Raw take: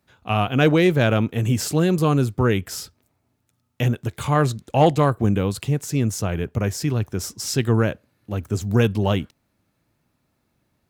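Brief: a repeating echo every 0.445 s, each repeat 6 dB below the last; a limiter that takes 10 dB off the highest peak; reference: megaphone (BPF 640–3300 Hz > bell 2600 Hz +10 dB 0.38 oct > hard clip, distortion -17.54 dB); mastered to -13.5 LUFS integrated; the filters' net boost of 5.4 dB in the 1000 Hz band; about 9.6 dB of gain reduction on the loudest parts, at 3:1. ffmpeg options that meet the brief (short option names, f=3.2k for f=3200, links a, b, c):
-af "equalizer=f=1k:t=o:g=8.5,acompressor=threshold=-20dB:ratio=3,alimiter=limit=-18dB:level=0:latency=1,highpass=640,lowpass=3.3k,equalizer=f=2.6k:t=o:w=0.38:g=10,aecho=1:1:445|890|1335|1780|2225|2670:0.501|0.251|0.125|0.0626|0.0313|0.0157,asoftclip=type=hard:threshold=-24dB,volume=21dB"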